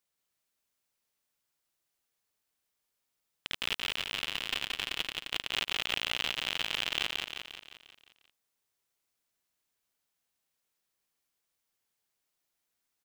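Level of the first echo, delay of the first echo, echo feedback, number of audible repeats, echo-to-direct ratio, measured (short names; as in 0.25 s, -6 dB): -3.5 dB, 0.176 s, 54%, 6, -2.0 dB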